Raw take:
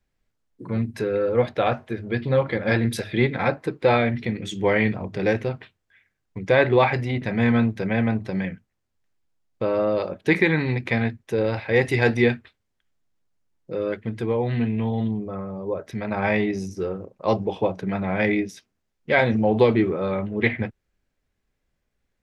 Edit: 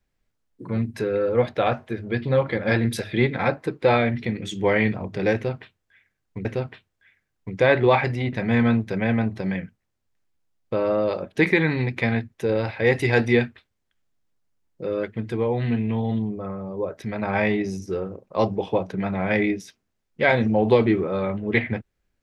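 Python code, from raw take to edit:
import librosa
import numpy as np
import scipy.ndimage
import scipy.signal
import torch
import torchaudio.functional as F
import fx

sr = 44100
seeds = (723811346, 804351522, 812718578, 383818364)

y = fx.edit(x, sr, fx.repeat(start_s=5.34, length_s=1.11, count=2), tone=tone)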